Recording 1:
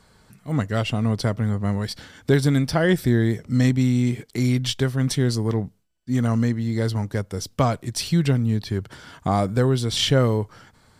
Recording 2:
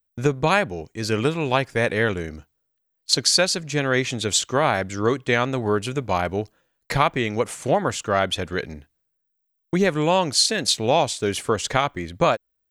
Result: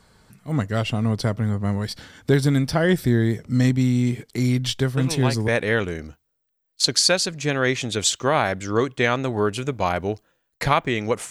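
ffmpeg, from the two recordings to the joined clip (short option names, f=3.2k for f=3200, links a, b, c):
-filter_complex "[1:a]asplit=2[a][b];[0:a]apad=whole_dur=11.3,atrim=end=11.3,atrim=end=5.482[c];[b]atrim=start=1.768:end=7.59[d];[a]atrim=start=1.26:end=1.77,asetpts=PTS-STARTPTS,volume=-6.5dB,afade=t=in:d=0.004:c=hsin,afade=t=out:st=0.506:d=0.004:c=hsin,adelay=219177S[e];[c][d]acrossfade=d=0.004:c1=hsin:c2=hsin[f];[f][e]amix=inputs=2:normalize=0"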